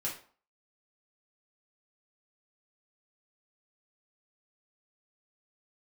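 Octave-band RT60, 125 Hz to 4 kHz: 0.35, 0.45, 0.45, 0.45, 0.35, 0.30 seconds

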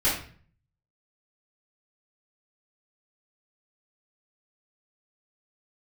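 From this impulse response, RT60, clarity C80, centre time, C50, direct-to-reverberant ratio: 0.45 s, 8.5 dB, 39 ms, 4.0 dB, −12.0 dB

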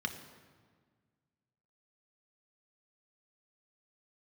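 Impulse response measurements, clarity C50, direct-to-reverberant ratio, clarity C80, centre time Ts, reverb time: 9.5 dB, 5.0 dB, 11.0 dB, 18 ms, 1.6 s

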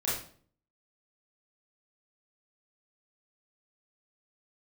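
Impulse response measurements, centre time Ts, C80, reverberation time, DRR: 50 ms, 7.5 dB, 0.50 s, −8.5 dB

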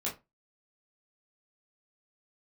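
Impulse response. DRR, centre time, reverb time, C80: −6.0 dB, 23 ms, 0.25 s, 19.5 dB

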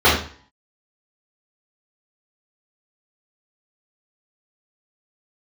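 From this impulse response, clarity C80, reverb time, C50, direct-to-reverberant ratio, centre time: 8.5 dB, 0.45 s, 3.5 dB, −11.5 dB, 41 ms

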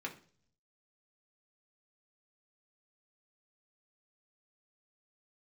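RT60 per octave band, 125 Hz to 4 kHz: 1.0, 0.70, 0.55, 0.40, 0.40, 0.50 seconds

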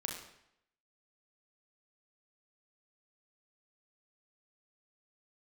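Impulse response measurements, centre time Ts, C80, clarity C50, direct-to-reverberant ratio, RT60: 37 ms, 7.0 dB, 4.0 dB, 1.0 dB, 0.75 s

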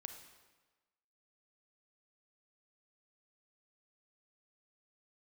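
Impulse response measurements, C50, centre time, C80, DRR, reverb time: 7.0 dB, 25 ms, 9.0 dB, 6.0 dB, 1.3 s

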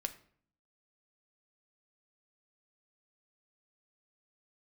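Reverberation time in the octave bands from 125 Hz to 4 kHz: 0.80, 0.80, 0.55, 0.50, 0.50, 0.40 seconds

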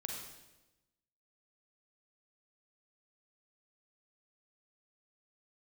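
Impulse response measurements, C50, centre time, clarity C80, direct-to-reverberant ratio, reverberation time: 1.5 dB, 56 ms, 4.0 dB, 0.0 dB, 1.0 s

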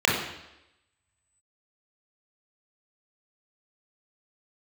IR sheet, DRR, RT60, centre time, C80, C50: −4.5 dB, 0.90 s, 52 ms, 6.0 dB, 2.5 dB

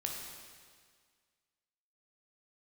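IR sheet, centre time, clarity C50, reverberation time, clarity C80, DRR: 75 ms, 2.0 dB, 1.8 s, 3.5 dB, −0.5 dB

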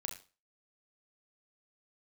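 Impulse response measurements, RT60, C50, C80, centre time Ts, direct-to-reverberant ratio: non-exponential decay, 9.0 dB, 14.5 dB, 20 ms, 2.0 dB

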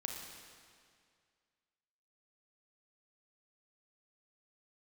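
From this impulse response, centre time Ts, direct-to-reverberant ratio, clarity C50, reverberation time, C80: 76 ms, 1.0 dB, 2.5 dB, 2.1 s, 4.0 dB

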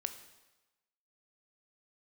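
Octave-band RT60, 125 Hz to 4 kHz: 0.95, 0.95, 1.1, 1.1, 1.0, 1.0 seconds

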